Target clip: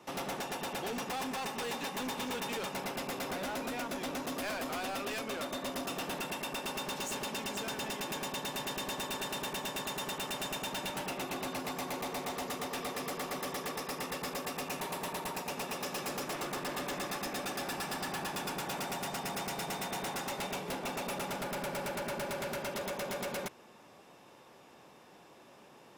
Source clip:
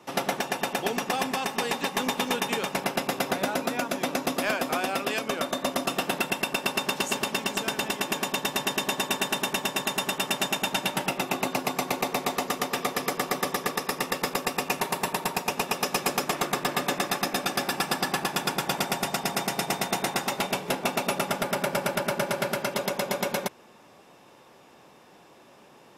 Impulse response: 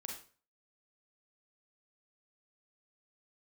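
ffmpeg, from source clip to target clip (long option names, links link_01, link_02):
-af "asoftclip=type=hard:threshold=-31dB,volume=-3.5dB"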